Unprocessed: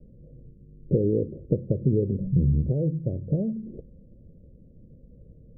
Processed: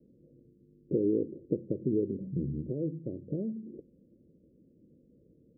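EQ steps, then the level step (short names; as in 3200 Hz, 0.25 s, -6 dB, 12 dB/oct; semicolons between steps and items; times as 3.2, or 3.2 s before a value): band-pass 320 Hz, Q 2.5; 0.0 dB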